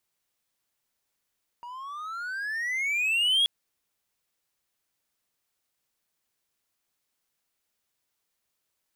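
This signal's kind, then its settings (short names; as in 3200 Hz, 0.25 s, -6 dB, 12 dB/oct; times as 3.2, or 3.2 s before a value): gliding synth tone triangle, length 1.83 s, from 944 Hz, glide +22 st, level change +19 dB, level -17 dB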